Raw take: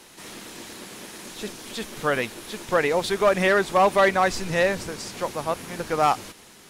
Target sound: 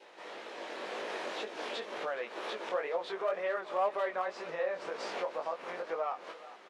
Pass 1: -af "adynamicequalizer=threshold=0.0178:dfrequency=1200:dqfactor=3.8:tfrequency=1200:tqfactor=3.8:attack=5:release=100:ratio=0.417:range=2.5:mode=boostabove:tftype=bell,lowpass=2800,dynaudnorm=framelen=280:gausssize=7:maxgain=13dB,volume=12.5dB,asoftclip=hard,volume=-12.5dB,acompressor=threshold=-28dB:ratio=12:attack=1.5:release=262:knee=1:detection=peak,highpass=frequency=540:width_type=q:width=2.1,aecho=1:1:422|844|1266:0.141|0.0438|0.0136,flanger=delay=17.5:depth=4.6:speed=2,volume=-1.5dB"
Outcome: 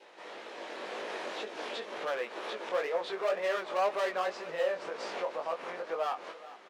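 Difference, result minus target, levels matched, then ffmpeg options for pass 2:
gain into a clipping stage and back: distortion +16 dB
-af "adynamicequalizer=threshold=0.0178:dfrequency=1200:dqfactor=3.8:tfrequency=1200:tqfactor=3.8:attack=5:release=100:ratio=0.417:range=2.5:mode=boostabove:tftype=bell,lowpass=2800,dynaudnorm=framelen=280:gausssize=7:maxgain=13dB,volume=4.5dB,asoftclip=hard,volume=-4.5dB,acompressor=threshold=-28dB:ratio=12:attack=1.5:release=262:knee=1:detection=peak,highpass=frequency=540:width_type=q:width=2.1,aecho=1:1:422|844|1266:0.141|0.0438|0.0136,flanger=delay=17.5:depth=4.6:speed=2,volume=-1.5dB"

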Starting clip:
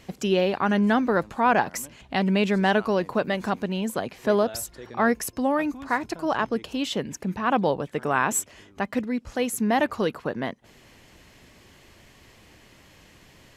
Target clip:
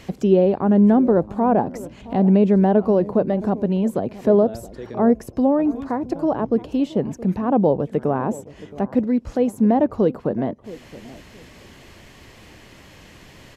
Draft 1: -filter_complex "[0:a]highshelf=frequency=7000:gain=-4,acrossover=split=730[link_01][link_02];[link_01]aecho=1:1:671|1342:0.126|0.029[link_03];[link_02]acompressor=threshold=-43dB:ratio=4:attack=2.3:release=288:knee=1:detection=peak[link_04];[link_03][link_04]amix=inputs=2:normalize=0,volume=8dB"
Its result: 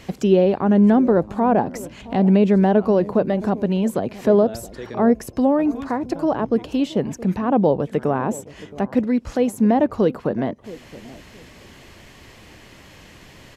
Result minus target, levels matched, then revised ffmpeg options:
downward compressor: peak gain reduction −7 dB
-filter_complex "[0:a]highshelf=frequency=7000:gain=-4,acrossover=split=730[link_01][link_02];[link_01]aecho=1:1:671|1342:0.126|0.029[link_03];[link_02]acompressor=threshold=-52dB:ratio=4:attack=2.3:release=288:knee=1:detection=peak[link_04];[link_03][link_04]amix=inputs=2:normalize=0,volume=8dB"

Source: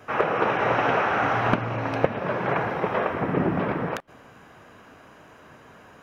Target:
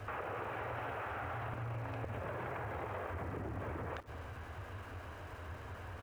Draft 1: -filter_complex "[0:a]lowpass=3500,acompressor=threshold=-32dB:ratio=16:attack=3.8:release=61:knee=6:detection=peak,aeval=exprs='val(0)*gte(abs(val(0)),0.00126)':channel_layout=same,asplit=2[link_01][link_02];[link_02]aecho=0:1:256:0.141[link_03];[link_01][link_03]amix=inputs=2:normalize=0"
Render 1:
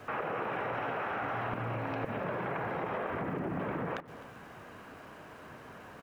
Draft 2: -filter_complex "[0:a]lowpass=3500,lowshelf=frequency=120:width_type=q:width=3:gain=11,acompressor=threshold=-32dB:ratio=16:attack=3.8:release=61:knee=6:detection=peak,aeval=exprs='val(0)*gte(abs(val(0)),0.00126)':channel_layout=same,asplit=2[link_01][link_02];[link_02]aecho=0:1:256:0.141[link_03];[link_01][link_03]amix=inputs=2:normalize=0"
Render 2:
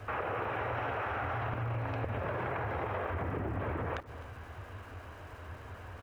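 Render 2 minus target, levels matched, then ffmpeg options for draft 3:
downward compressor: peak gain reduction −6 dB
-filter_complex "[0:a]lowpass=3500,lowshelf=frequency=120:width_type=q:width=3:gain=11,acompressor=threshold=-38.5dB:ratio=16:attack=3.8:release=61:knee=6:detection=peak,aeval=exprs='val(0)*gte(abs(val(0)),0.00126)':channel_layout=same,asplit=2[link_01][link_02];[link_02]aecho=0:1:256:0.141[link_03];[link_01][link_03]amix=inputs=2:normalize=0"

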